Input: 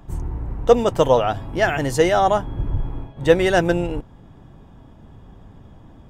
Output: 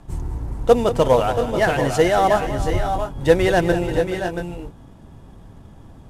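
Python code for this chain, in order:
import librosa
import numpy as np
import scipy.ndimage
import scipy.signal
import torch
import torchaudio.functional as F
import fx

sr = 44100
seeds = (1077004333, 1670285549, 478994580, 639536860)

p1 = fx.cvsd(x, sr, bps=64000)
y = p1 + fx.echo_multitap(p1, sr, ms=(189, 426, 680, 702), db=(-13.0, -14.0, -8.5, -13.0), dry=0)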